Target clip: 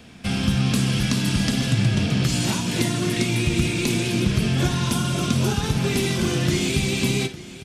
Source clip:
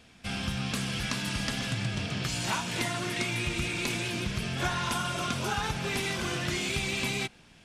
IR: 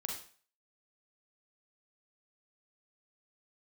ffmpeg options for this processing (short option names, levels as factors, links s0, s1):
-filter_complex "[0:a]highshelf=f=7400:g=4.5,acrossover=split=450|3000[s0][s1][s2];[s1]acompressor=threshold=0.00891:ratio=6[s3];[s0][s3][s2]amix=inputs=3:normalize=0,equalizer=f=210:t=o:w=2.7:g=6.5,aecho=1:1:54|856:0.178|0.141,asplit=2[s4][s5];[1:a]atrim=start_sample=2205,lowpass=5700[s6];[s5][s6]afir=irnorm=-1:irlink=0,volume=0.299[s7];[s4][s7]amix=inputs=2:normalize=0,volume=1.88"